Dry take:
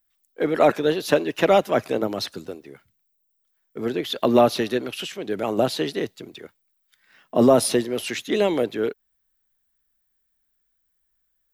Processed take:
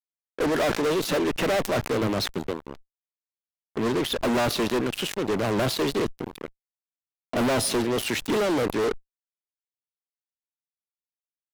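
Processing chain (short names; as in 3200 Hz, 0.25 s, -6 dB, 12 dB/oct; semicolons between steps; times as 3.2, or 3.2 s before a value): tilt -1.5 dB/oct; fuzz box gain 30 dB, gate -36 dBFS; sustainer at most 120 dB/s; gain -8 dB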